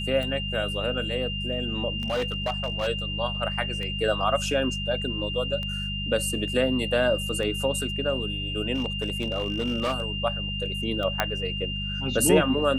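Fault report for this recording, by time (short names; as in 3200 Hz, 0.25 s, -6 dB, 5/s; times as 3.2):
hum 50 Hz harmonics 4 -33 dBFS
tick 33 1/3 rpm -21 dBFS
tone 2800 Hz -31 dBFS
2–2.88 clipped -22.5 dBFS
8.74–10.04 clipped -21.5 dBFS
11.2 pop -7 dBFS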